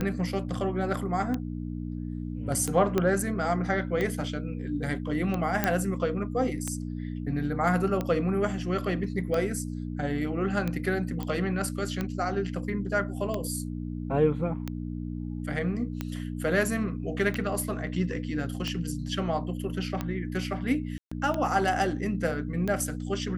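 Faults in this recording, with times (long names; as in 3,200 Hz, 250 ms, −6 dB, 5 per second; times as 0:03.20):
mains hum 60 Hz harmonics 5 −34 dBFS
scratch tick 45 rpm −17 dBFS
0:02.98: click −12 dBFS
0:05.64: click −9 dBFS
0:11.23: click −20 dBFS
0:20.98–0:21.11: drop-out 135 ms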